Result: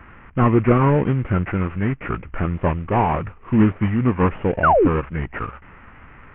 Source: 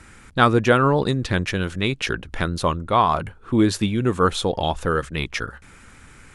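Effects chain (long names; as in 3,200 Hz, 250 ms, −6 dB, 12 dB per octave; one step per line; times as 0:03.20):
variable-slope delta modulation 16 kbit/s
formants moved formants −3 semitones
sound drawn into the spectrogram fall, 0:04.63–0:04.88, 250–1,600 Hz −17 dBFS
level +3 dB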